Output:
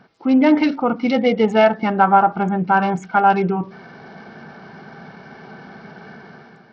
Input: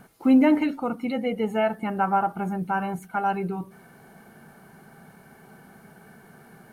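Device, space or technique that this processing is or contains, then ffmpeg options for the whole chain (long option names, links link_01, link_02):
Bluetooth headset: -af "highpass=frequency=150:poles=1,dynaudnorm=framelen=110:gausssize=9:maxgain=11dB,aresample=16000,aresample=44100,volume=1dB" -ar 44100 -c:a sbc -b:a 64k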